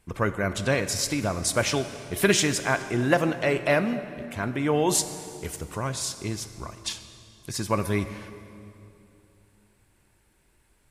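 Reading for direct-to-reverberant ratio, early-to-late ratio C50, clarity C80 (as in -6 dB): 10.0 dB, 11.0 dB, 12.0 dB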